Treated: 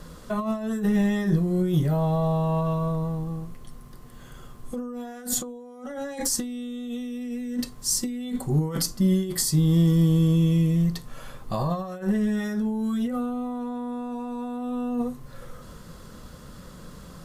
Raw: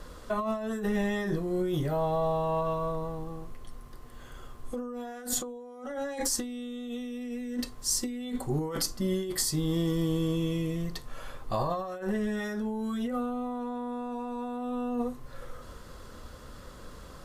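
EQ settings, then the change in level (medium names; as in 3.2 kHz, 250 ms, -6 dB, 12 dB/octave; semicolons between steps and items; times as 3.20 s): peaking EQ 170 Hz +12.5 dB 0.79 oct; treble shelf 5 kHz +5.5 dB; 0.0 dB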